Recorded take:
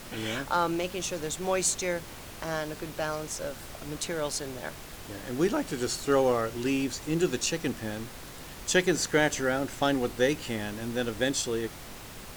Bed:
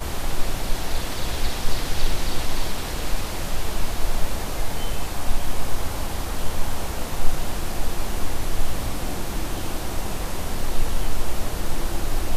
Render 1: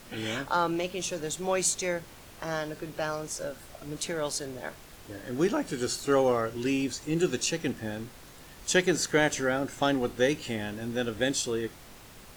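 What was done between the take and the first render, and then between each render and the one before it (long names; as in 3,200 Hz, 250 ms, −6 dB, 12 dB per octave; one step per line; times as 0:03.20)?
noise reduction from a noise print 6 dB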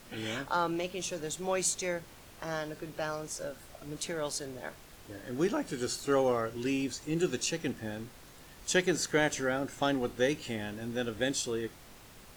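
level −3.5 dB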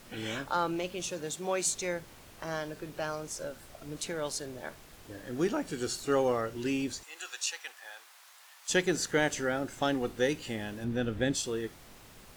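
0:01.08–0:01.65: high-pass filter 54 Hz → 220 Hz
0:07.03–0:08.70: high-pass filter 820 Hz 24 dB per octave
0:10.84–0:11.35: bass and treble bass +8 dB, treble −8 dB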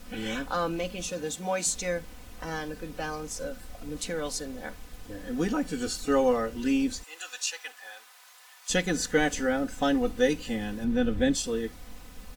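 low-shelf EQ 130 Hz +11.5 dB
comb filter 4 ms, depth 83%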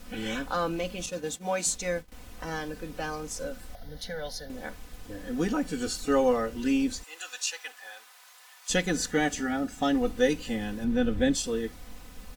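0:01.06–0:02.12: downward expander −34 dBFS
0:03.75–0:04.50: phaser with its sweep stopped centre 1,700 Hz, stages 8
0:09.10–0:09.95: notch comb filter 510 Hz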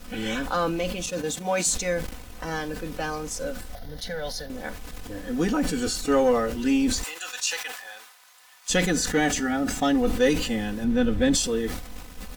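leveller curve on the samples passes 1
level that may fall only so fast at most 59 dB per second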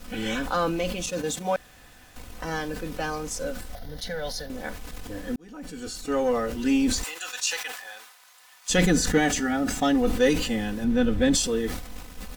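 0:01.56–0:02.16: fill with room tone
0:05.36–0:06.75: fade in
0:08.78–0:09.18: low-shelf EQ 320 Hz +6.5 dB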